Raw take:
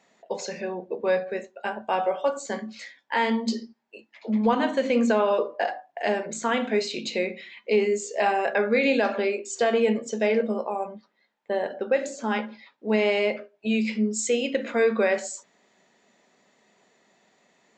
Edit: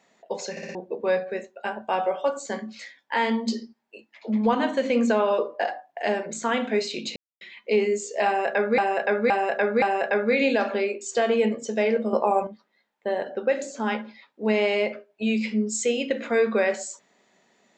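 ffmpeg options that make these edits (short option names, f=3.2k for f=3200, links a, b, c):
-filter_complex "[0:a]asplit=12[a][b][c][d][e][f][g][h][i][j][k][l];[a]atrim=end=0.572[m];[b]atrim=start=0.508:end=0.572[n];[c]atrim=start=0.508:end=0.572[o];[d]atrim=start=0.508:end=0.572[p];[e]atrim=start=0.748:end=7.16,asetpts=PTS-STARTPTS,afade=t=out:st=6.408:d=0.004:c=hsin[q];[f]atrim=start=7.16:end=7.41,asetpts=PTS-STARTPTS,volume=0[r];[g]atrim=start=7.41:end=8.782,asetpts=PTS-STARTPTS,afade=t=in:d=0.004:c=hsin[s];[h]atrim=start=8.258:end=8.782[t];[i]atrim=start=8.258:end=8.782[u];[j]atrim=start=8.258:end=10.572[v];[k]atrim=start=10.568:end=10.912,asetpts=PTS-STARTPTS,volume=7.5dB[w];[l]atrim=start=10.908[x];[m][n]acrossfade=d=0.004:c1=hsin:c2=hsin[y];[y][o]acrossfade=d=0.004:c1=hsin:c2=hsin[z];[z][p]acrossfade=d=0.004:c1=hsin:c2=hsin[aa];[q][r][s]concat=n=3:v=0:a=1[ab];[aa][ab]acrossfade=d=0.004:c1=hsin:c2=hsin[ac];[ac][t]acrossfade=d=0.004:c1=hsin:c2=hsin[ad];[ad][u]acrossfade=d=0.004:c1=hsin:c2=hsin[ae];[ae][v]acrossfade=d=0.004:c1=hsin:c2=hsin[af];[af][w]acrossfade=d=0.004:c1=hsin:c2=hsin[ag];[ag][x]acrossfade=d=0.004:c1=hsin:c2=hsin"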